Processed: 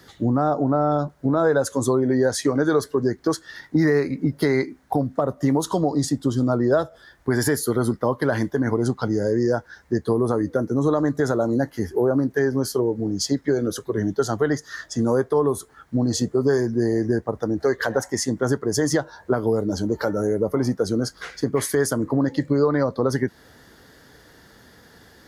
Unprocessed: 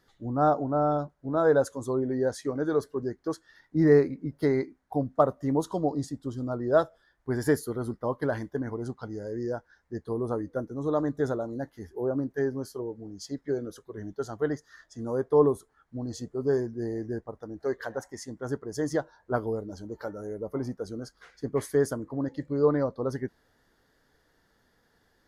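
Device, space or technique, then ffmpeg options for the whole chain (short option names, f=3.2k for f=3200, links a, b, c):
mastering chain: -filter_complex "[0:a]asettb=1/sr,asplit=3[a][b][c];[a]atrim=end=10.584[d];[b]atrim=start=10.58:end=12.06,asetpts=PTS-STARTPTS,afade=t=in:d=0.004:c=qsin,afade=t=out:st=1.476:d=0.004:c=qsin,bandreject=f=3.6k:w=8.3[e];[c]atrim=start=12.056[f];[d][e]acrossfade=d=0.004:c1=hsin:c2=qsin[g];[g][f]acrossfade=d=0.004:c1=qsin:c2=hsin,highpass=58,equalizer=f=900:t=o:w=2.2:g=-3.5,acrossover=split=100|780[h][i][j];[h]acompressor=threshold=-58dB:ratio=4[k];[i]acompressor=threshold=-34dB:ratio=4[l];[j]acompressor=threshold=-39dB:ratio=4[m];[k][l][m]amix=inputs=3:normalize=0,acompressor=threshold=-42dB:ratio=1.5,alimiter=level_in=28dB:limit=-1dB:release=50:level=0:latency=1,volume=-8.5dB"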